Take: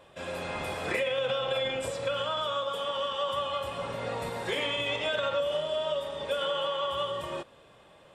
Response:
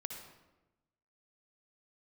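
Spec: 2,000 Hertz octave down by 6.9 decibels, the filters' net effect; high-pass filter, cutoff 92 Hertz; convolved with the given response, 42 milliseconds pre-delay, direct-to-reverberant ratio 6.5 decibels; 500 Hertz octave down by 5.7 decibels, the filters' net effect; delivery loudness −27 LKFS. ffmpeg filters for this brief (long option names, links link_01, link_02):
-filter_complex "[0:a]highpass=92,equalizer=frequency=500:width_type=o:gain=-6,equalizer=frequency=2000:width_type=o:gain=-9,asplit=2[link_01][link_02];[1:a]atrim=start_sample=2205,adelay=42[link_03];[link_02][link_03]afir=irnorm=-1:irlink=0,volume=-5dB[link_04];[link_01][link_04]amix=inputs=2:normalize=0,volume=7.5dB"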